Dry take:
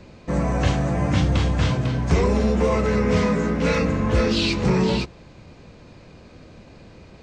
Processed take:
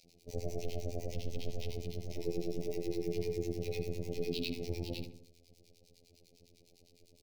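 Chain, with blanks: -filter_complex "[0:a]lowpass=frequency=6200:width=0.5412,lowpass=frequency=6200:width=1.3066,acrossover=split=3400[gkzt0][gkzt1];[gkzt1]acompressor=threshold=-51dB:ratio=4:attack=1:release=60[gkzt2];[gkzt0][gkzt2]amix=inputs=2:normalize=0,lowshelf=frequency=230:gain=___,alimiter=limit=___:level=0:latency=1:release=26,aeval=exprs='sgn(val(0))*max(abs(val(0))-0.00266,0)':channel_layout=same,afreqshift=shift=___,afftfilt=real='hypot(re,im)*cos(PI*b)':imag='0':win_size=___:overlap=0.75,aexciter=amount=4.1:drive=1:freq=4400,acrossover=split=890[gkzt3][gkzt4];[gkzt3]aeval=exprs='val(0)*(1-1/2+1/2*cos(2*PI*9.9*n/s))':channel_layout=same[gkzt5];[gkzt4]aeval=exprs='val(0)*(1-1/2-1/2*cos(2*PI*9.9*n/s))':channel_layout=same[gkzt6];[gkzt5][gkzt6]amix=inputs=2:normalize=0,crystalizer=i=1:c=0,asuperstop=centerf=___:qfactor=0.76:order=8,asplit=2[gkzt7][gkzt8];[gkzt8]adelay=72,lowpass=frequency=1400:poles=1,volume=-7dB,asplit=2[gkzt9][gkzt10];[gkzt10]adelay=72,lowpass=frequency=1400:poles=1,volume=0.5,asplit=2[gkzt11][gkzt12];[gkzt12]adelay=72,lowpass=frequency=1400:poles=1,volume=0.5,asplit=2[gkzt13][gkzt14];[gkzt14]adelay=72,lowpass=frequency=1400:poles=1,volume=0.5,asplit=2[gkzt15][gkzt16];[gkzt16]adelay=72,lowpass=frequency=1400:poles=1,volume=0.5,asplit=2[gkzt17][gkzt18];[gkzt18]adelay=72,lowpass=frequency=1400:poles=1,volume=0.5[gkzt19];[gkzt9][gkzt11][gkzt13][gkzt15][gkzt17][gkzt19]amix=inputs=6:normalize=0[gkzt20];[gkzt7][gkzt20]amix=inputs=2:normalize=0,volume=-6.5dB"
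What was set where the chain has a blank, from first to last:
-4, -16dB, -72, 2048, 1300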